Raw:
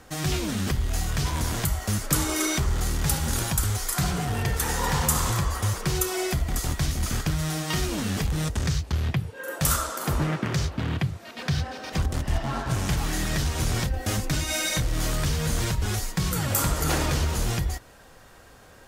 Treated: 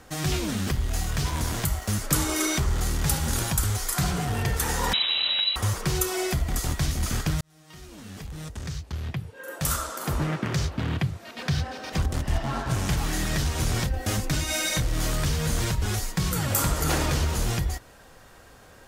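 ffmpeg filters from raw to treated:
-filter_complex "[0:a]asettb=1/sr,asplit=3[s0][s1][s2];[s0]atrim=end=0.574[s3];[s1]atrim=start=0.57:end=1.98,asetpts=PTS-STARTPTS,afade=t=in:d=0.004:c=qsin,afade=t=out:st=1.406:d=0.004:c=qsin,aeval=exprs='sgn(val(0))*max(abs(val(0))-0.00531,0)':c=same[s4];[s2]atrim=start=1.976[s5];[s3][s4]acrossfade=d=0.004:c1=hsin:c2=qsin[s6];[s6][s5]acrossfade=d=0.004:c1=qsin:c2=hsin,asettb=1/sr,asplit=3[s7][s8][s9];[s7]atrim=end=4.934[s10];[s8]atrim=start=4.93:end=5.56,asetpts=PTS-STARTPTS,afade=t=in:d=0.004:c=qsin,afade=t=out:st=0.626:d=0.004:c=qsin,lowpass=f=3400:t=q:w=0.5098,lowpass=f=3400:t=q:w=0.6013,lowpass=f=3400:t=q:w=0.9,lowpass=f=3400:t=q:w=2.563,afreqshift=-4000[s11];[s9]atrim=start=5.556[s12];[s10][s11]acrossfade=d=0.004:c1=hsin:c2=qsin[s13];[s13][s12]acrossfade=d=0.004:c1=qsin:c2=hsin,asplit=2[s14][s15];[s14]atrim=end=7.41,asetpts=PTS-STARTPTS,afade=t=out:st=7.406:d=0.004:c=hsin[s16];[s15]atrim=start=7.41,asetpts=PTS-STARTPTS,afade=t=in:d=3.32[s17];[s16][s17]concat=n=2:v=0:a=1"

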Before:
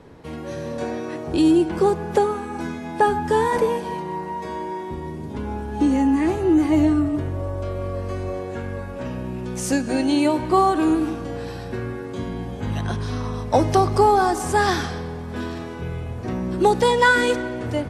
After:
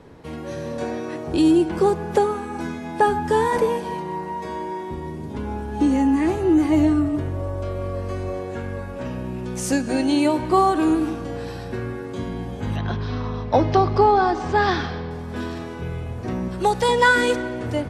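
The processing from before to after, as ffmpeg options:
-filter_complex "[0:a]asettb=1/sr,asplit=3[s0][s1][s2];[s0]atrim=end=12.764[s3];[s1]atrim=start=12.76:end=15.11,asetpts=PTS-STARTPTS,afade=t=in:d=0.004:c=qsin,afade=t=out:st=2.346:d=0.004:c=qsin,lowpass=f=4600:w=0.5412,lowpass=f=4600:w=1.3066[s4];[s2]atrim=start=15.106[s5];[s3][s4]acrossfade=d=0.004:c1=hsin:c2=qsin[s6];[s6][s5]acrossfade=d=0.004:c1=qsin:c2=hsin,asettb=1/sr,asplit=3[s7][s8][s9];[s7]atrim=end=16.484[s10];[s8]atrim=start=16.48:end=16.89,asetpts=PTS-STARTPTS,afade=t=in:d=0.004:c=qsin,afade=t=out:st=0.406:d=0.004:c=qsin,equalizer=f=290:t=o:w=0.77:g=-13[s11];[s9]atrim=start=16.886[s12];[s10][s11]acrossfade=d=0.004:c1=hsin:c2=qsin[s13];[s13][s12]acrossfade=d=0.004:c1=qsin:c2=hsin"

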